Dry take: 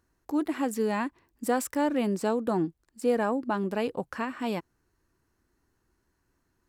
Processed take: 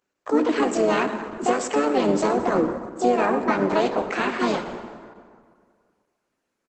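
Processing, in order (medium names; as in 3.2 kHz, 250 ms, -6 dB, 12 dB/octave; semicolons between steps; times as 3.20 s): high-pass 250 Hz 12 dB/octave; gate -56 dBFS, range -13 dB; compression 16:1, threshold -27 dBFS, peak gain reduction 8 dB; harmony voices -4 st -10 dB, +7 st -1 dB; plate-style reverb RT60 2 s, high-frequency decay 0.6×, DRR 6.5 dB; trim +8.5 dB; Opus 12 kbps 48 kHz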